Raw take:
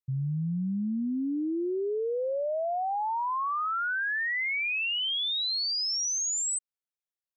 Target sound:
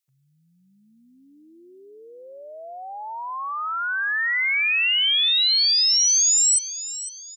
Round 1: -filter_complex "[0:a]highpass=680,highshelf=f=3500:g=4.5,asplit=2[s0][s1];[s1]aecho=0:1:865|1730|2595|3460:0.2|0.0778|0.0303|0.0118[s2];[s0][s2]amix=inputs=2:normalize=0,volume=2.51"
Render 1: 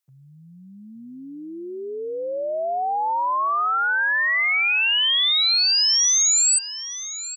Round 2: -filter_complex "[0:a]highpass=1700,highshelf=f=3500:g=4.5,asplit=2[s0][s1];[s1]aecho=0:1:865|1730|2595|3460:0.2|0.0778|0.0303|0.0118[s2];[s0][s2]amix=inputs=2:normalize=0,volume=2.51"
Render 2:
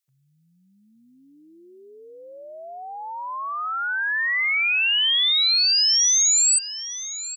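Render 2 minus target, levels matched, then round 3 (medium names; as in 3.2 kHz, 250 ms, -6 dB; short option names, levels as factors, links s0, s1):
echo 362 ms late
-filter_complex "[0:a]highpass=1700,highshelf=f=3500:g=4.5,asplit=2[s0][s1];[s1]aecho=0:1:503|1006|1509|2012:0.2|0.0778|0.0303|0.0118[s2];[s0][s2]amix=inputs=2:normalize=0,volume=2.51"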